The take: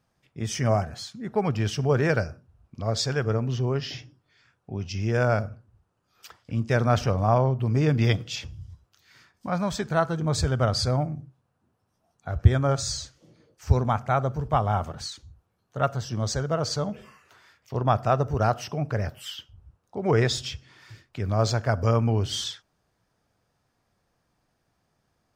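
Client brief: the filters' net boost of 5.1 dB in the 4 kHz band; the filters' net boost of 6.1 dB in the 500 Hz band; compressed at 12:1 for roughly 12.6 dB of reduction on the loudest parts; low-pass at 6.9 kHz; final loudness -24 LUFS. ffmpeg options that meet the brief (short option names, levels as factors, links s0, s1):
-af "lowpass=6900,equalizer=f=500:t=o:g=7.5,equalizer=f=4000:t=o:g=7,acompressor=threshold=0.0708:ratio=12,volume=1.88"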